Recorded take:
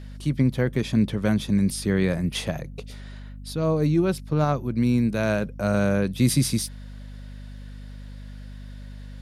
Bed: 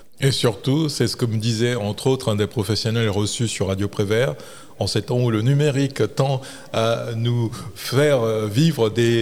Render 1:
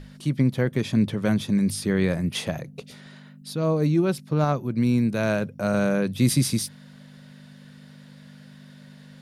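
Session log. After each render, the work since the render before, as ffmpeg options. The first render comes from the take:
-af "bandreject=f=50:t=h:w=6,bandreject=f=100:t=h:w=6"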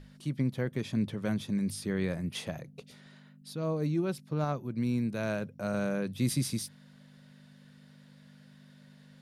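-af "volume=-9dB"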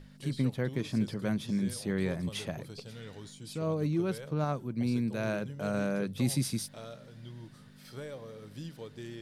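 -filter_complex "[1:a]volume=-26dB[a];[0:a][a]amix=inputs=2:normalize=0"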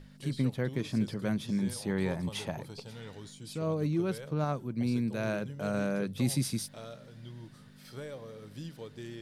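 -filter_complex "[0:a]asettb=1/sr,asplit=3[a][b][c];[a]atrim=end=1.584[d];[b]atrim=start=1.58:end=3.11,asetpts=PTS-STARTPTS,afade=t=in:d=0.004:c=qsin,afade=t=out:st=1.526:d=0.004:c=qsin,equalizer=f=880:t=o:w=0.36:g=10[e];[c]atrim=start=3.106[f];[d][e]acrossfade=d=0.004:c1=hsin:c2=qsin[g];[g][f]acrossfade=d=0.004:c1=qsin:c2=hsin"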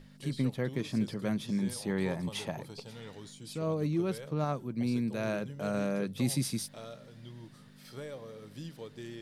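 -af "equalizer=f=67:w=1.6:g=-10.5,bandreject=f=1.5k:w=24"

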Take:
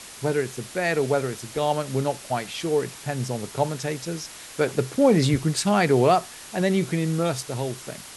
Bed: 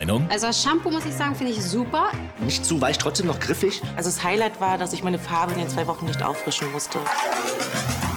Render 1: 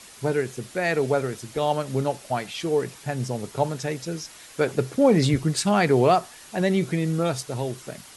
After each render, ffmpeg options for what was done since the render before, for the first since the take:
-af "afftdn=nr=6:nf=-42"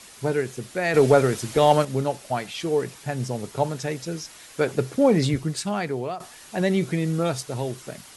-filter_complex "[0:a]asettb=1/sr,asplit=3[a][b][c];[a]atrim=end=0.944[d];[b]atrim=start=0.94:end=1.85,asetpts=PTS-STARTPTS,afade=t=in:d=0.004:c=qsin,afade=t=out:st=0.906:d=0.004:c=qsin,acontrast=85[e];[c]atrim=start=1.846[f];[d][e]acrossfade=d=0.004:c1=hsin:c2=qsin[g];[g][f]acrossfade=d=0.004:c1=qsin:c2=hsin,asplit=2[h][i];[h]atrim=end=6.2,asetpts=PTS-STARTPTS,afade=t=out:st=5.01:d=1.19:silence=0.16788[j];[i]atrim=start=6.2,asetpts=PTS-STARTPTS,afade=t=in:d=0.004:c=hsin:silence=0.16788[k];[j][k]concat=n=2:v=0:a=1"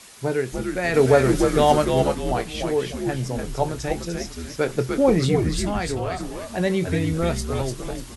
-filter_complex "[0:a]asplit=2[a][b];[b]adelay=23,volume=-12dB[c];[a][c]amix=inputs=2:normalize=0,asplit=6[d][e][f][g][h][i];[e]adelay=297,afreqshift=-94,volume=-4.5dB[j];[f]adelay=594,afreqshift=-188,volume=-13.1dB[k];[g]adelay=891,afreqshift=-282,volume=-21.8dB[l];[h]adelay=1188,afreqshift=-376,volume=-30.4dB[m];[i]adelay=1485,afreqshift=-470,volume=-39dB[n];[d][j][k][l][m][n]amix=inputs=6:normalize=0"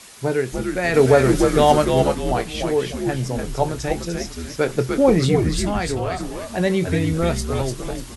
-af "volume=2.5dB,alimiter=limit=-3dB:level=0:latency=1"

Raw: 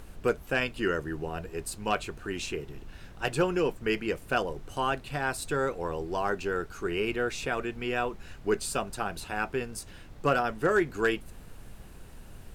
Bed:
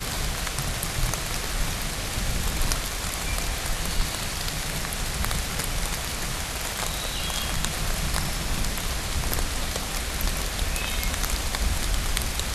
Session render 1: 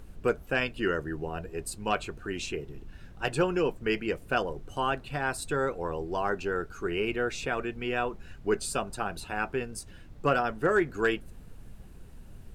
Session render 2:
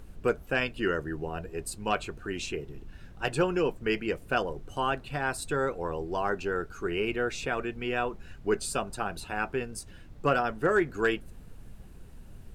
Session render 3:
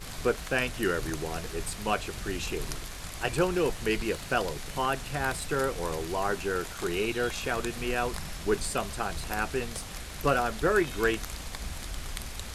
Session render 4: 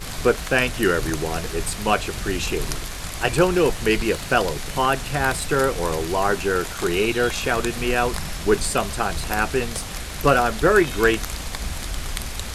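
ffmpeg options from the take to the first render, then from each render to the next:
-af "afftdn=nr=7:nf=-48"
-af anull
-filter_complex "[1:a]volume=-11.5dB[a];[0:a][a]amix=inputs=2:normalize=0"
-af "volume=8.5dB"

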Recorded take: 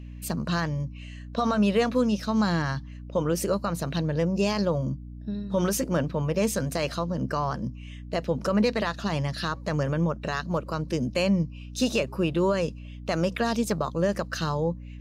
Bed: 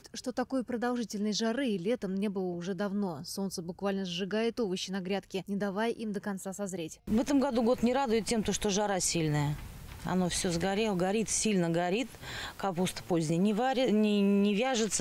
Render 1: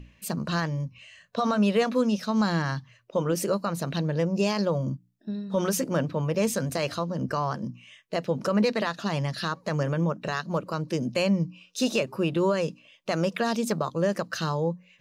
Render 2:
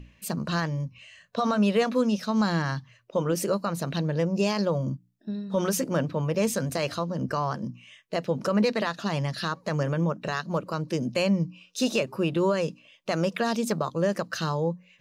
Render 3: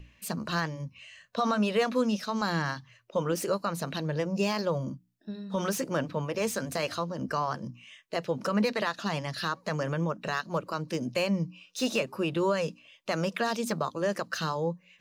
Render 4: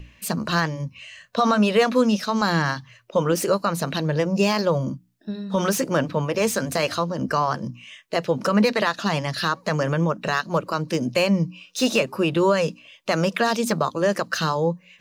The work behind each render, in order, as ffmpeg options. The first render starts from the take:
-af "bandreject=f=60:t=h:w=6,bandreject=f=120:t=h:w=6,bandreject=f=180:t=h:w=6,bandreject=f=240:t=h:w=6,bandreject=f=300:t=h:w=6"
-af anull
-filter_complex "[0:a]acrossover=split=730|2600[a][b][c];[a]flanger=delay=1.8:depth=2.8:regen=-58:speed=1.7:shape=triangular[d];[c]asoftclip=type=tanh:threshold=-31.5dB[e];[d][b][e]amix=inputs=3:normalize=0"
-af "volume=8dB"

